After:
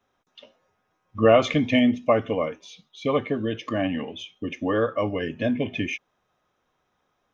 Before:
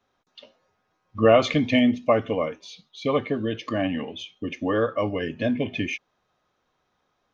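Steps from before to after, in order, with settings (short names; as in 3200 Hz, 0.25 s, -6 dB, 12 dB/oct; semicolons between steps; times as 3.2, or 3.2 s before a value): bell 4400 Hz -10 dB 0.22 oct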